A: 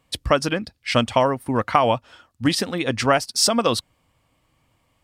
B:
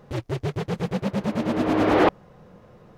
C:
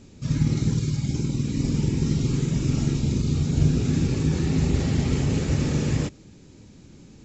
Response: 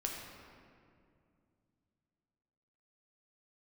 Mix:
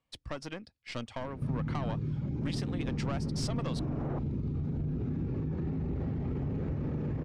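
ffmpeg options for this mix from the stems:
-filter_complex "[0:a]aeval=exprs='(tanh(5.62*val(0)+0.6)-tanh(0.6))/5.62':channel_layout=same,volume=-14.5dB[link_01];[1:a]adelay=2100,volume=-12.5dB[link_02];[2:a]alimiter=limit=-20dB:level=0:latency=1:release=37,adelay=1200,volume=3dB[link_03];[link_02][link_03]amix=inputs=2:normalize=0,lowpass=1200,acompressor=threshold=-31dB:ratio=6,volume=0dB[link_04];[link_01][link_04]amix=inputs=2:normalize=0,lowpass=7600,acrossover=split=350[link_05][link_06];[link_06]acompressor=threshold=-35dB:ratio=6[link_07];[link_05][link_07]amix=inputs=2:normalize=0"

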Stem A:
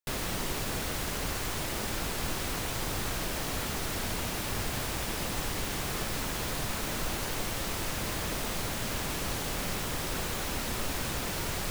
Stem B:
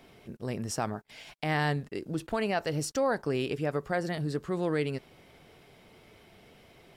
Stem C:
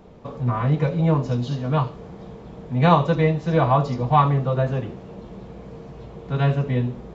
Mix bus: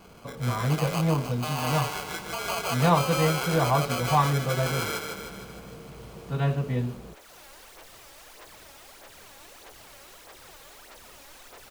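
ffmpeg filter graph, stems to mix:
ffmpeg -i stem1.wav -i stem2.wav -i stem3.wav -filter_complex "[0:a]aphaser=in_gain=1:out_gain=1:delay=3.7:decay=0.6:speed=1.6:type=sinusoidal,adelay=300,volume=-16dB,afade=type=in:start_time=7.07:duration=0.31:silence=0.398107,asplit=2[link_01][link_02];[link_02]volume=-14dB[link_03];[1:a]acrusher=samples=24:mix=1:aa=0.000001,highpass=780,acontrast=74,volume=0dB,asplit=2[link_04][link_05];[link_05]volume=-5.5dB[link_06];[2:a]volume=-5.5dB[link_07];[link_01][link_04]amix=inputs=2:normalize=0,highpass=frequency=400:width=0.5412,highpass=frequency=400:width=1.3066,alimiter=limit=-20dB:level=0:latency=1:release=11,volume=0dB[link_08];[link_03][link_06]amix=inputs=2:normalize=0,aecho=0:1:153|306|459|612|765|918|1071|1224|1377:1|0.58|0.336|0.195|0.113|0.0656|0.0381|0.0221|0.0128[link_09];[link_07][link_08][link_09]amix=inputs=3:normalize=0" out.wav

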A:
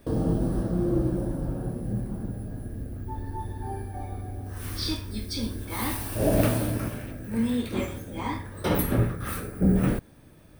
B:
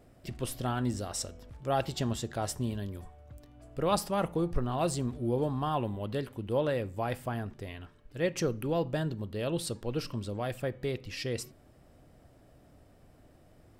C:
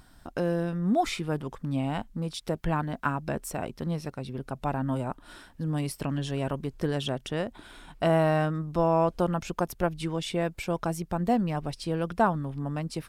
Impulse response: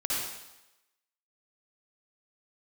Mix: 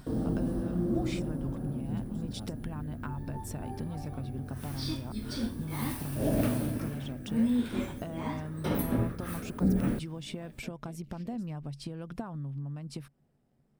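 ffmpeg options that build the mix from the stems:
-filter_complex "[0:a]volume=-8dB[link_01];[1:a]aeval=exprs='val(0)*sin(2*PI*100*n/s)':channel_layout=same,volume=-14dB[link_02];[2:a]acompressor=threshold=-32dB:ratio=6,volume=1dB[link_03];[link_02][link_03]amix=inputs=2:normalize=0,equalizer=frequency=140:width=5.8:gain=14.5,acompressor=threshold=-38dB:ratio=6,volume=0dB[link_04];[link_01][link_04]amix=inputs=2:normalize=0,equalizer=frequency=240:width_type=o:width=0.53:gain=8"

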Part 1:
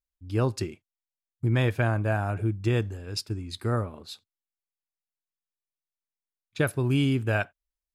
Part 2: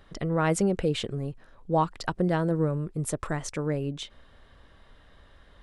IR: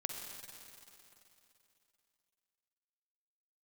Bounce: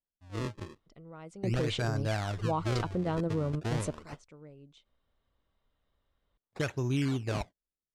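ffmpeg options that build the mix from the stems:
-filter_complex "[0:a]dynaudnorm=framelen=260:gausssize=7:maxgain=5.5dB,acrusher=samples=34:mix=1:aa=0.000001:lfo=1:lforange=54.4:lforate=0.4,volume=-11dB,asplit=2[link_01][link_02];[1:a]equalizer=frequency=1700:width_type=o:width=0.21:gain=-10,adelay=750,volume=-2.5dB[link_03];[link_02]apad=whole_len=281102[link_04];[link_03][link_04]sidechaingate=range=-20dB:threshold=-44dB:ratio=16:detection=peak[link_05];[link_01][link_05]amix=inputs=2:normalize=0,lowpass=6900,alimiter=limit=-22dB:level=0:latency=1:release=55"

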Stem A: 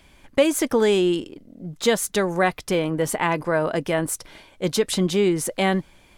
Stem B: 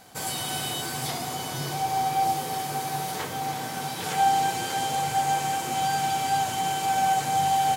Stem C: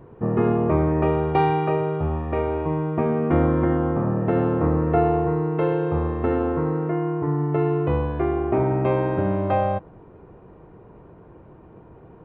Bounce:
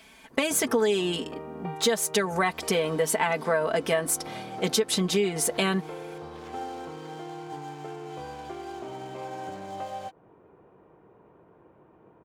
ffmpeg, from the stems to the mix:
ffmpeg -i stem1.wav -i stem2.wav -i stem3.wav -filter_complex "[0:a]aecho=1:1:4.5:0.8,volume=1.5dB[link_01];[1:a]adynamicsmooth=sensitivity=5:basefreq=2700,adelay=2350,volume=-16dB[link_02];[2:a]acompressor=threshold=-29dB:ratio=4,adelay=300,volume=-6dB[link_03];[link_01][link_02][link_03]amix=inputs=3:normalize=0,highpass=frequency=330:poles=1,acompressor=threshold=-21dB:ratio=6" out.wav

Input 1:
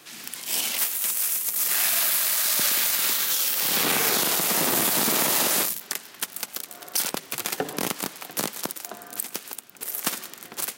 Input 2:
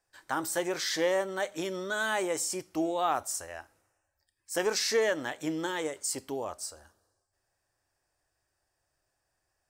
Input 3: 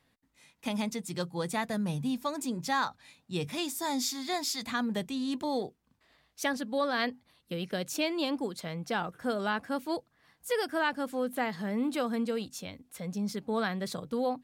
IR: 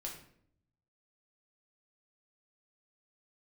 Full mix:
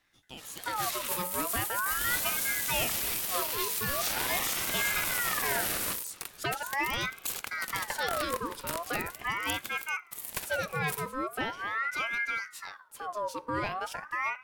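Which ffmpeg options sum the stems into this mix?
-filter_complex "[0:a]agate=range=-17dB:threshold=-43dB:ratio=16:detection=peak,adelay=300,volume=-6dB[link_01];[1:a]highpass=1500,volume=-5dB[link_02];[2:a]bandreject=frequency=270.6:width_type=h:width=4,bandreject=frequency=541.2:width_type=h:width=4,bandreject=frequency=811.8:width_type=h:width=4,asoftclip=type=tanh:threshold=-20dB,volume=1dB,asplit=2[link_03][link_04];[link_04]volume=-13dB[link_05];[3:a]atrim=start_sample=2205[link_06];[link_05][link_06]afir=irnorm=-1:irlink=0[link_07];[link_01][link_02][link_03][link_07]amix=inputs=4:normalize=0,highshelf=frequency=7100:gain=-8.5,aexciter=amount=2:drive=6.5:freq=8900,aeval=exprs='val(0)*sin(2*PI*1300*n/s+1300*0.45/0.41*sin(2*PI*0.41*n/s))':channel_layout=same"

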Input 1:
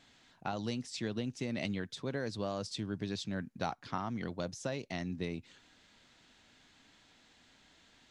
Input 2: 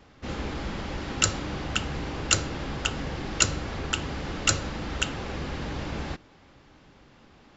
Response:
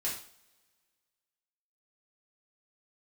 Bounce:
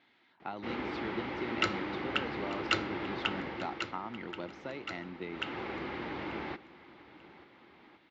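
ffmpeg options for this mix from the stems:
-filter_complex "[0:a]volume=-6dB[link_01];[1:a]adelay=400,volume=6dB,afade=type=out:start_time=3.37:duration=0.56:silence=0.237137,afade=type=in:start_time=5.29:duration=0.28:silence=0.251189,asplit=2[link_02][link_03];[link_03]volume=-18.5dB,aecho=0:1:888|1776|2664|3552:1|0.28|0.0784|0.022[link_04];[link_01][link_02][link_04]amix=inputs=3:normalize=0,highpass=140,equalizer=frequency=150:width_type=q:width=4:gain=-5,equalizer=frequency=350:width_type=q:width=4:gain=9,equalizer=frequency=890:width_type=q:width=4:gain=6,equalizer=frequency=1300:width_type=q:width=4:gain=4,equalizer=frequency=2100:width_type=q:width=4:gain=8,lowpass=frequency=4000:width=0.5412,lowpass=frequency=4000:width=1.3066"

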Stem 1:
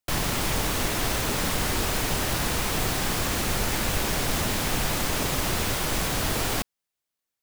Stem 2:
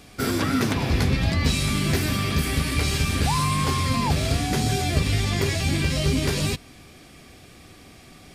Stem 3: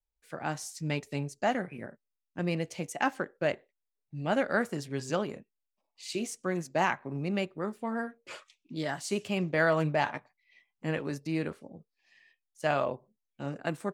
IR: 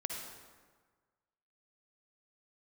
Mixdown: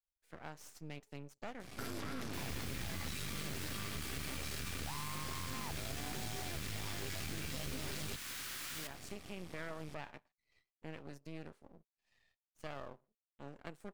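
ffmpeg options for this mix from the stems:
-filter_complex "[0:a]highpass=frequency=1300:width=0.5412,highpass=frequency=1300:width=1.3066,adelay=2250,volume=-12dB,asplit=2[link_01][link_02];[link_02]volume=-9dB[link_03];[1:a]adelay=1600,volume=0.5dB[link_04];[2:a]volume=-9dB[link_05];[link_04][link_05]amix=inputs=2:normalize=0,aeval=exprs='max(val(0),0)':channel_layout=same,alimiter=limit=-22.5dB:level=0:latency=1:release=35,volume=0dB[link_06];[3:a]atrim=start_sample=2205[link_07];[link_03][link_07]afir=irnorm=-1:irlink=0[link_08];[link_01][link_06][link_08]amix=inputs=3:normalize=0,acompressor=threshold=-45dB:ratio=2"

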